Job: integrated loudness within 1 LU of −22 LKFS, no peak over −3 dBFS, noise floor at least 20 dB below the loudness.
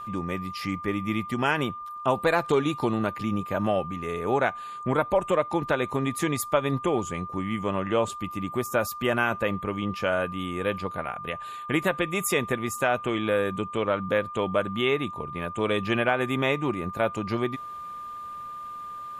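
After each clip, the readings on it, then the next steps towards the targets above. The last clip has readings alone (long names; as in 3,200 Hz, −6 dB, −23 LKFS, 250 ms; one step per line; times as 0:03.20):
interfering tone 1,200 Hz; level of the tone −35 dBFS; integrated loudness −27.0 LKFS; sample peak −8.0 dBFS; target loudness −22.0 LKFS
→ notch filter 1,200 Hz, Q 30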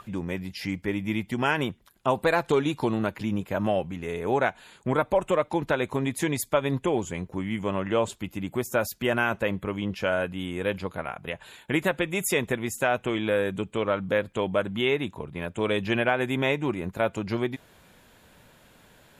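interfering tone none found; integrated loudness −27.5 LKFS; sample peak −9.0 dBFS; target loudness −22.0 LKFS
→ level +5.5 dB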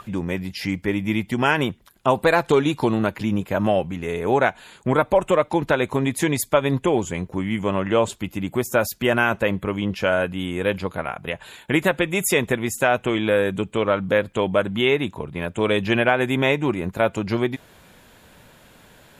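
integrated loudness −22.0 LKFS; sample peak −3.5 dBFS; background noise floor −52 dBFS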